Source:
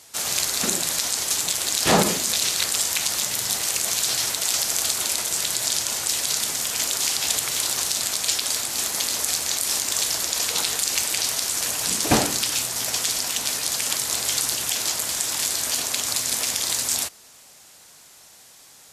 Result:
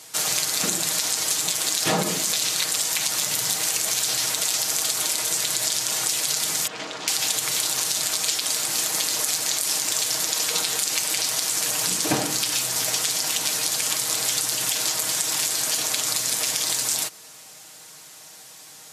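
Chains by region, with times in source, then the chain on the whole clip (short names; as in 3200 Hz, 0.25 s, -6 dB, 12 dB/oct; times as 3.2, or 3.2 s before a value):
6.67–7.08 HPF 180 Hz + tape spacing loss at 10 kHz 32 dB
whole clip: HPF 100 Hz 24 dB/oct; comb 6.4 ms, depth 50%; compressor 4:1, threshold -24 dBFS; gain +3.5 dB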